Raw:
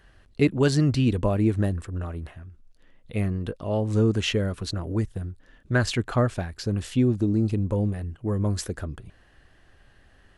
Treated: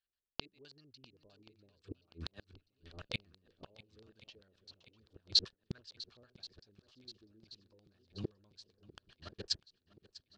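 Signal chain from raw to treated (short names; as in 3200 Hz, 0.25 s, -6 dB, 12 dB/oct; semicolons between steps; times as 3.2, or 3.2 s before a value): reverse delay 0.503 s, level -12 dB; gate -42 dBFS, range -44 dB; low shelf 480 Hz -7 dB; notch 2000 Hz, Q 7.8; flipped gate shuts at -29 dBFS, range -41 dB; LFO low-pass square 7.7 Hz 420–4700 Hz; bell 4200 Hz +12.5 dB 2.4 oct; on a send: swung echo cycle 1.079 s, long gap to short 1.5:1, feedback 56%, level -19.5 dB; on the sum: gain +1 dB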